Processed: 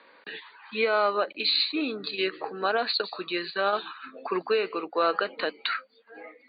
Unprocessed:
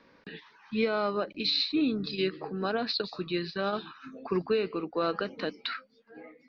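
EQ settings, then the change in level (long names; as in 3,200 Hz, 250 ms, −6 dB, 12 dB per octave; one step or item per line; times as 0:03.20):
linear-phase brick-wall low-pass 4,700 Hz
dynamic equaliser 3,700 Hz, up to −5 dB, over −45 dBFS, Q 2.4
high-pass filter 540 Hz 12 dB per octave
+7.5 dB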